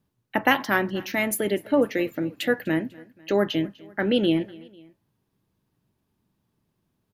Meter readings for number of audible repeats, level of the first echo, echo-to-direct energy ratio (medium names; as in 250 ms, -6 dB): 2, -22.5 dB, -21.5 dB